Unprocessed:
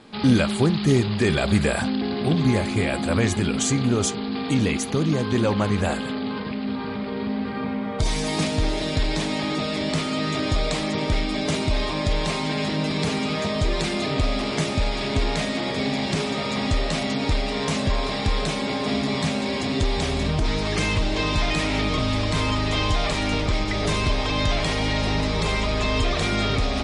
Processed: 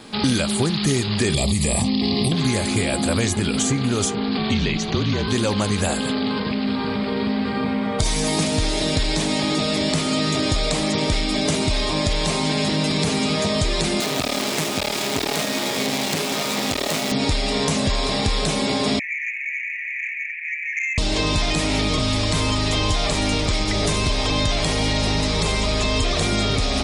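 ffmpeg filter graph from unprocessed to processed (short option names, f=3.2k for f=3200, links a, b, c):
-filter_complex "[0:a]asettb=1/sr,asplit=3[a][b][c];[a]atrim=end=1.344[d];[b]atrim=start=1.34:end=2.32,asetpts=PTS-STARTPTS,afade=t=in:d=0.004:c=qsin,afade=t=out:st=0.976:d=0.004:c=qsin,bass=f=250:g=9,treble=f=4k:g=12,acompressor=threshold=-16dB:ratio=6:attack=3.2:release=140:knee=1:detection=peak,asuperstop=centerf=1500:order=4:qfactor=2.3[e];[c]atrim=start=2.316[f];[d][e]acrossfade=d=0.004:c1=hsin:c2=qsin[g];[g][f]acrossfade=d=0.004:c1=qsin:c2=hsin,asettb=1/sr,asplit=3[h][i][j];[h]atrim=end=4.374[k];[i]atrim=start=4.37:end=5.28,asetpts=PTS-STARTPTS,afade=t=in:d=0.004:c=qsin,afade=t=out:st=0.906:d=0.004:c=qsin,lowpass=f=4.7k:w=0.5412,lowpass=f=4.7k:w=1.3066,afreqshift=-44[l];[j]atrim=start=5.276[m];[k][l]acrossfade=d=0.004:c1=hsin:c2=qsin[n];[n][m]acrossfade=d=0.004:c1=qsin:c2=hsin,asettb=1/sr,asplit=3[o][p][q];[o]atrim=end=14.004[r];[p]atrim=start=14:end=17.12,asetpts=PTS-STARTPTS,afade=t=in:d=0.004:c=qsin,afade=t=out:st=3.116:d=0.004:c=qsin,equalizer=f=2.5k:w=0.49:g=7.5,aeval=exprs='max(val(0),0)':c=same,highpass=160[s];[q]atrim=start=17.116[t];[r][s]acrossfade=d=0.004:c1=hsin:c2=qsin[u];[u][t]acrossfade=d=0.004:c1=qsin:c2=hsin,asettb=1/sr,asplit=3[v][w][x];[v]atrim=end=18.994[y];[w]atrim=start=18.99:end=20.98,asetpts=PTS-STARTPTS,afade=t=in:d=0.004:c=qsin,afade=t=out:st=1.986:d=0.004:c=qsin,asuperpass=centerf=2100:order=12:qfactor=2.7,aeval=exprs='0.188*sin(PI/2*1.58*val(0)/0.188)':c=same[z];[x]atrim=start=20.976[aa];[y][z]acrossfade=d=0.004:c1=hsin:c2=qsin[ab];[ab][aa]acrossfade=d=0.004:c1=qsin:c2=hsin,aemphasis=mode=production:type=50kf,acrossover=split=1000|2900[ac][ad][ae];[ac]acompressor=threshold=-25dB:ratio=4[af];[ad]acompressor=threshold=-39dB:ratio=4[ag];[ae]acompressor=threshold=-32dB:ratio=4[ah];[af][ag][ah]amix=inputs=3:normalize=0,volume=6dB"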